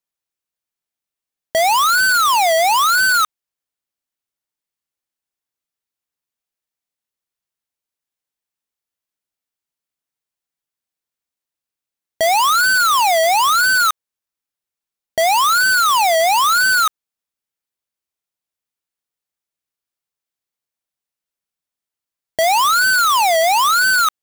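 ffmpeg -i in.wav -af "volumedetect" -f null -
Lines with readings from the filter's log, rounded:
mean_volume: -19.4 dB
max_volume: -13.9 dB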